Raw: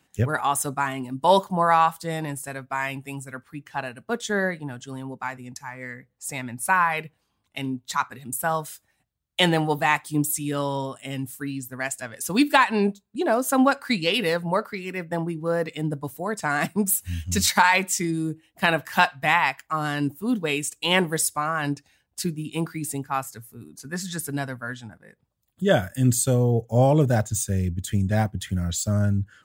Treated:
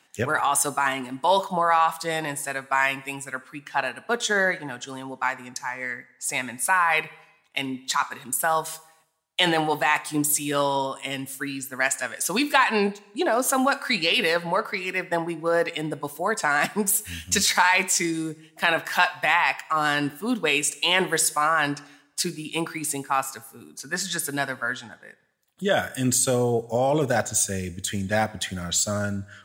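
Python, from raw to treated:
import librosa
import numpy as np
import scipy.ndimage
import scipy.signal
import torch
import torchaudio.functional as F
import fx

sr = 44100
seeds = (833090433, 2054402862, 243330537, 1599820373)

p1 = fx.highpass(x, sr, hz=760.0, slope=6)
p2 = fx.high_shelf(p1, sr, hz=12000.0, db=-10.5)
p3 = fx.over_compress(p2, sr, threshold_db=-28.0, ratio=-0.5)
p4 = p2 + (p3 * 10.0 ** (0.0 / 20.0))
y = fx.rev_plate(p4, sr, seeds[0], rt60_s=0.83, hf_ratio=1.0, predelay_ms=0, drr_db=16.0)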